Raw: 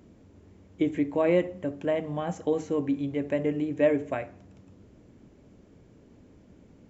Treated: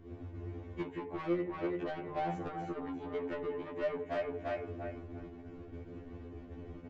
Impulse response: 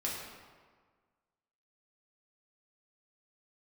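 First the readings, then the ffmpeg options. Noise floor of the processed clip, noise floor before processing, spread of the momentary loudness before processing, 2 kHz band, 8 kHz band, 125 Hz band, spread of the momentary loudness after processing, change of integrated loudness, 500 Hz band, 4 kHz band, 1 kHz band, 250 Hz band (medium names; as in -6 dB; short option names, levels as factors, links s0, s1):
-50 dBFS, -56 dBFS, 9 LU, -6.5 dB, no reading, -7.0 dB, 13 LU, -12.0 dB, -9.5 dB, -7.0 dB, -1.5 dB, -10.5 dB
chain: -af "aeval=exprs='val(0)+0.00126*(sin(2*PI*50*n/s)+sin(2*PI*2*50*n/s)/2+sin(2*PI*3*50*n/s)/3+sin(2*PI*4*50*n/s)/4+sin(2*PI*5*50*n/s)/5)':c=same,lowpass=2500,bandreject=f=60:t=h:w=6,bandreject=f=120:t=h:w=6,bandreject=f=180:t=h:w=6,bandreject=f=240:t=h:w=6,bandreject=f=300:t=h:w=6,aecho=1:1:344|688|1032:0.355|0.0781|0.0172,agate=range=0.282:threshold=0.00224:ratio=16:detection=peak,aecho=1:1:2.7:0.49,acompressor=threshold=0.0126:ratio=6,asoftclip=type=tanh:threshold=0.0106,afftfilt=real='re*2*eq(mod(b,4),0)':imag='im*2*eq(mod(b,4),0)':win_size=2048:overlap=0.75,volume=3.55"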